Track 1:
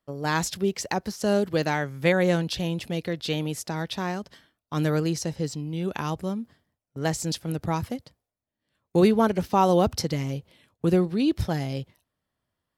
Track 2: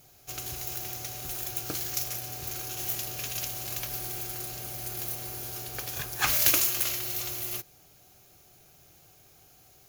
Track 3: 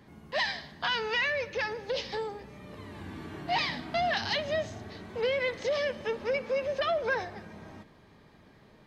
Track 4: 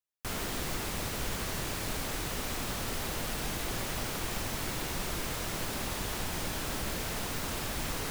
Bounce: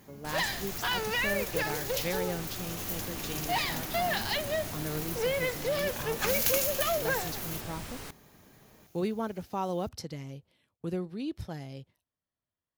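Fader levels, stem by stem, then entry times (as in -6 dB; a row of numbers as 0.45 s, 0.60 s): -12.5 dB, -5.5 dB, -1.5 dB, -7.5 dB; 0.00 s, 0.00 s, 0.00 s, 0.00 s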